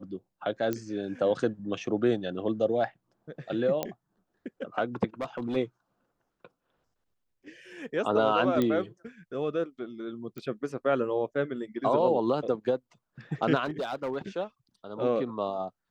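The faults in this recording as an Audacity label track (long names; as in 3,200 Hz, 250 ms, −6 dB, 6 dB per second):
0.730000	0.730000	click −17 dBFS
3.830000	3.830000	click −15 dBFS
5.210000	5.570000	clipping −27.5 dBFS
8.620000	8.620000	click −15 dBFS
10.380000	10.380000	click −26 dBFS
13.640000	14.170000	clipping −27 dBFS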